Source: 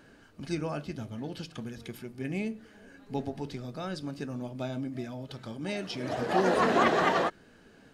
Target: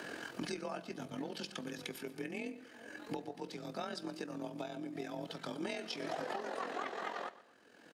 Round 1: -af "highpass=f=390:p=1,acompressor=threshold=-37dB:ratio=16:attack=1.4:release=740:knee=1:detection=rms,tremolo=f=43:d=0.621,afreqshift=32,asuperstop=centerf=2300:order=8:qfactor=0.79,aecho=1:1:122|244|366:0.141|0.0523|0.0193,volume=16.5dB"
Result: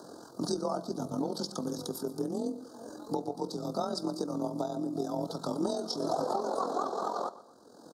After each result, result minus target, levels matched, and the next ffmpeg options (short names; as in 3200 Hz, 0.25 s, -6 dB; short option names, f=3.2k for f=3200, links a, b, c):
2000 Hz band -19.5 dB; compressor: peak gain reduction -9.5 dB
-af "highpass=f=390:p=1,acompressor=threshold=-37dB:ratio=16:attack=1.4:release=740:knee=1:detection=rms,tremolo=f=43:d=0.621,afreqshift=32,aecho=1:1:122|244|366:0.141|0.0523|0.0193,volume=16.5dB"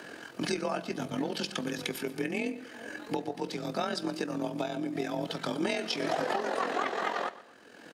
compressor: peak gain reduction -9.5 dB
-af "highpass=f=390:p=1,acompressor=threshold=-47dB:ratio=16:attack=1.4:release=740:knee=1:detection=rms,tremolo=f=43:d=0.621,afreqshift=32,aecho=1:1:122|244|366:0.141|0.0523|0.0193,volume=16.5dB"